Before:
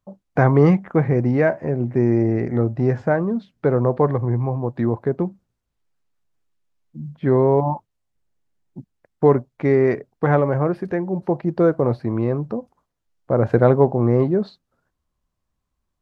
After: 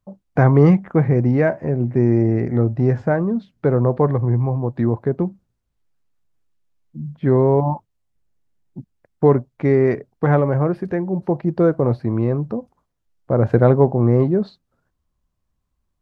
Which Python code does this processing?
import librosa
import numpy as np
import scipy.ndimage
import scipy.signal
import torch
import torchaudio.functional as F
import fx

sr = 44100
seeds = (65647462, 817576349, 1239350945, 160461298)

y = fx.low_shelf(x, sr, hz=240.0, db=5.5)
y = y * 10.0 ** (-1.0 / 20.0)